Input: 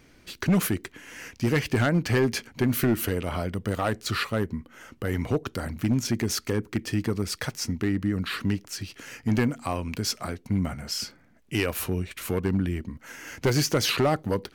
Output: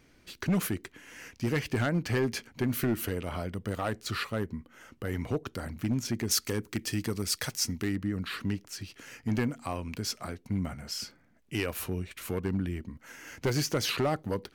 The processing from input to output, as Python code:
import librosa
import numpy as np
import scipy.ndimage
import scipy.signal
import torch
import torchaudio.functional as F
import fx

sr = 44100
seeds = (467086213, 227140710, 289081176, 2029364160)

y = fx.high_shelf(x, sr, hz=3300.0, db=10.5, at=(6.31, 7.96))
y = F.gain(torch.from_numpy(y), -5.5).numpy()